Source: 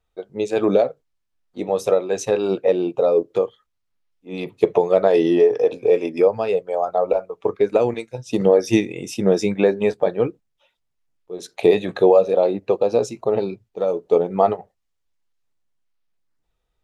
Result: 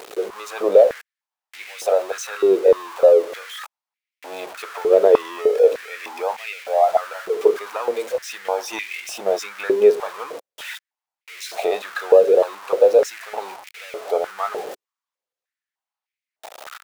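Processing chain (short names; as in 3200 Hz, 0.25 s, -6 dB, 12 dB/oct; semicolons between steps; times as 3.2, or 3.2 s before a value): zero-crossing step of -25 dBFS; stepped high-pass 3.3 Hz 410–2200 Hz; gain -5.5 dB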